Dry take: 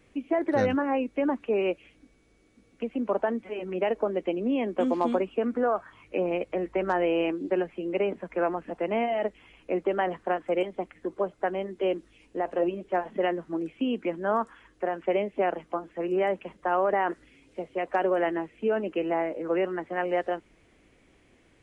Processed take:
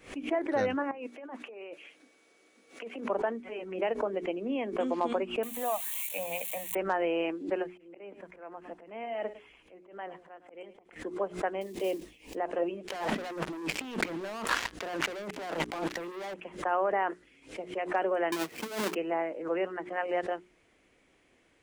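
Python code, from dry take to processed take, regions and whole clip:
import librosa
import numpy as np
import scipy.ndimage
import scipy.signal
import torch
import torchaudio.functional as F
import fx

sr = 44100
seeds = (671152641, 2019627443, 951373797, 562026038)

y = fx.chain(x, sr, fx.highpass(hz=370.0, slope=12),
    fx.over_compress(threshold_db=-37.0, ratio=-1.0), at=(0.91, 3.1))
y = fx.chain(y, sr, fx.crossing_spikes(level_db=-27.0),
    fx.high_shelf(hz=3000.0, db=8.0),
    fx.fixed_phaser(hz=1400.0, stages=6), at=(5.43, 6.75))
y = fx.chain(y, sr, fx.auto_swell(attack_ms=552.0),
    fx.echo_single(ms=107, db=-15.0), at=(7.69, 10.96))
y = fx.chain(y, sr, fx.block_float(bits=5),
    fx.peak_eq(hz=1400.0, db=-14.0, octaves=0.43),
    fx.sustainer(db_per_s=130.0), at=(11.61, 12.37))
y = fx.chain(y, sr, fx.leveller(passes=5),
    fx.over_compress(threshold_db=-31.0, ratio=-1.0), at=(12.87, 16.34))
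y = fx.chain(y, sr, fx.halfwave_hold(),
    fx.highpass(hz=110.0, slope=12),
    fx.over_compress(threshold_db=-27.0, ratio=-0.5), at=(18.32, 18.95))
y = fx.low_shelf(y, sr, hz=230.0, db=-9.0)
y = fx.hum_notches(y, sr, base_hz=60, count=7)
y = fx.pre_swell(y, sr, db_per_s=150.0)
y = F.gain(torch.from_numpy(y), -2.5).numpy()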